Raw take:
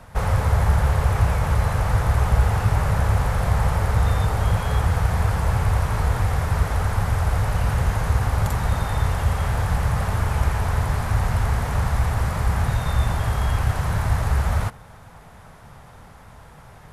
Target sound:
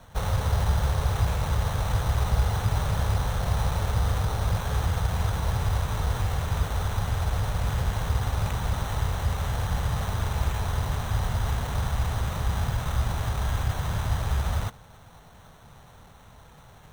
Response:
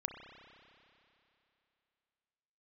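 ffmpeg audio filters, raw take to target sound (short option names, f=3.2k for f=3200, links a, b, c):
-af "acrusher=samples=9:mix=1:aa=0.000001,volume=-5.5dB"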